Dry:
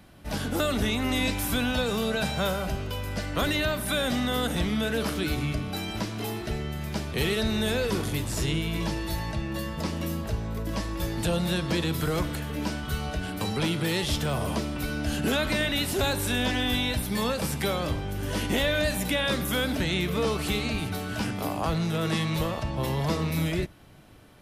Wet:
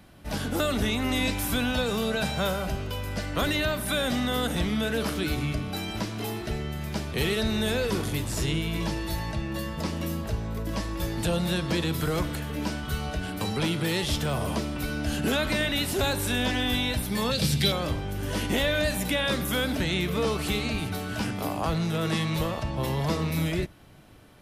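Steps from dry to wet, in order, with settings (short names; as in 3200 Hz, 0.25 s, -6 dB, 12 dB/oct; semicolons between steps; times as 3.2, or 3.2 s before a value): 17.31–17.72 graphic EQ 125/1000/4000 Hz +10/-10/+12 dB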